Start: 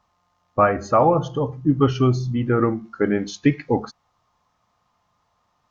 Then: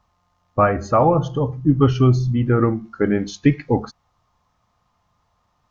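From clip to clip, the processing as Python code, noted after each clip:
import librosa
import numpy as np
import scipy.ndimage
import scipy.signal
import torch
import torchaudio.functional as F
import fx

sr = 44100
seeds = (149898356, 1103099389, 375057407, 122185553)

y = fx.low_shelf(x, sr, hz=120.0, db=10.5)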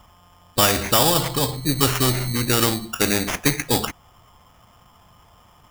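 y = fx.sample_hold(x, sr, seeds[0], rate_hz=4200.0, jitter_pct=0)
y = fx.spectral_comp(y, sr, ratio=2.0)
y = y * 10.0 ** (2.5 / 20.0)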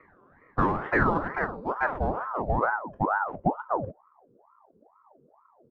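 y = fx.filter_sweep_lowpass(x, sr, from_hz=740.0, to_hz=170.0, start_s=1.38, end_s=4.29, q=3.5)
y = fx.ring_lfo(y, sr, carrier_hz=750.0, swing_pct=60, hz=2.2)
y = y * 10.0 ** (-6.0 / 20.0)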